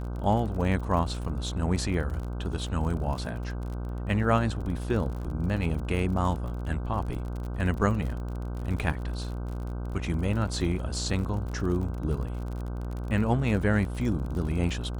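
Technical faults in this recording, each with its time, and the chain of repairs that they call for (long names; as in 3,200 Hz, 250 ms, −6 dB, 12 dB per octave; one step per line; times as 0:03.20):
mains buzz 60 Hz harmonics 26 −33 dBFS
surface crackle 44 per second −35 dBFS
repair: click removal
hum removal 60 Hz, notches 26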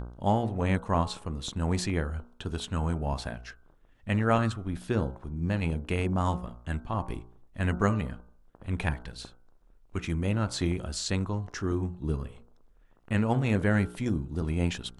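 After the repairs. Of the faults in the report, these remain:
none of them is left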